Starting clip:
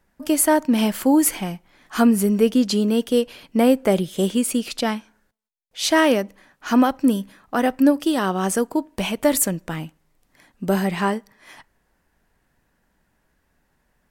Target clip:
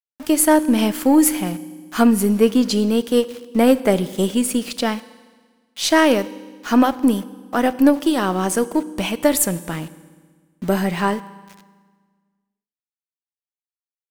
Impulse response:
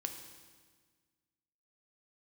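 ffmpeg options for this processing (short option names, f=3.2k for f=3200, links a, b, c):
-filter_complex "[0:a]aeval=exprs='val(0)*gte(abs(val(0)),0.0141)':c=same,aeval=exprs='0.562*(cos(1*acos(clip(val(0)/0.562,-1,1)))-cos(1*PI/2))+0.0355*(cos(3*acos(clip(val(0)/0.562,-1,1)))-cos(3*PI/2))+0.00891*(cos(8*acos(clip(val(0)/0.562,-1,1)))-cos(8*PI/2))':c=same,asplit=2[a][b];[1:a]atrim=start_sample=2205[c];[b][c]afir=irnorm=-1:irlink=0,volume=-5.5dB[d];[a][d]amix=inputs=2:normalize=0"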